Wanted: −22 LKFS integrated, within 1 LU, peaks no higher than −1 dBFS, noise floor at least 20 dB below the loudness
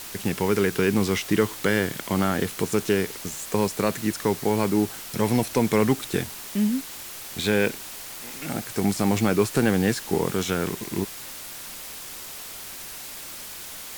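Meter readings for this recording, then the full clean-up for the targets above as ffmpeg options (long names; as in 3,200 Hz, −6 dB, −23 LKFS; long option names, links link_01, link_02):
background noise floor −38 dBFS; target noise floor −46 dBFS; integrated loudness −25.5 LKFS; sample peak −7.0 dBFS; target loudness −22.0 LKFS
→ -af "afftdn=noise_reduction=8:noise_floor=-38"
-af "volume=3.5dB"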